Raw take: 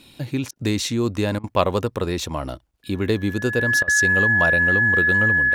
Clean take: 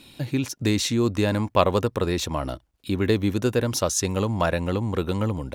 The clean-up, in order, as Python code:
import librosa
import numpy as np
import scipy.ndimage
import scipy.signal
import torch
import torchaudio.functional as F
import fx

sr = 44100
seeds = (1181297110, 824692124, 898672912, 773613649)

y = fx.notch(x, sr, hz=1700.0, q=30.0)
y = fx.fix_interpolate(y, sr, at_s=(0.51, 1.39, 3.83), length_ms=46.0)